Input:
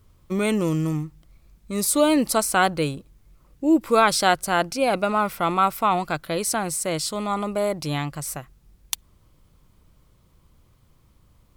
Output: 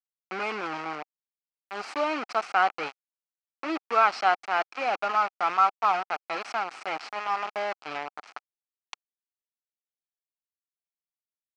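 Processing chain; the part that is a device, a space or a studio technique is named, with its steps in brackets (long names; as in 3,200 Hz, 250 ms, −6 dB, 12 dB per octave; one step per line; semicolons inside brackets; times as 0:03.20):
hand-held game console (bit reduction 4 bits; loudspeaker in its box 430–4,500 Hz, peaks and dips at 510 Hz −4 dB, 780 Hz +8 dB, 1,300 Hz +9 dB, 2,400 Hz +6 dB, 3,600 Hz −9 dB)
level −8.5 dB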